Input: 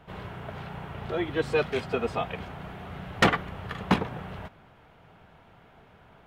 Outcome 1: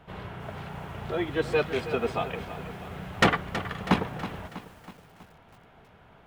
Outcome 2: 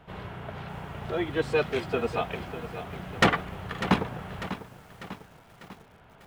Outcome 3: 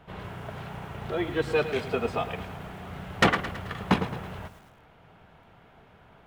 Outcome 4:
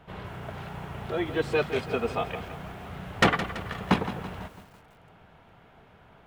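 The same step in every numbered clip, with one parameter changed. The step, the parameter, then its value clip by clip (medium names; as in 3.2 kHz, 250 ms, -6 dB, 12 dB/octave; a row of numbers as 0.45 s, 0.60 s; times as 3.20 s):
bit-crushed delay, time: 323 ms, 597 ms, 109 ms, 166 ms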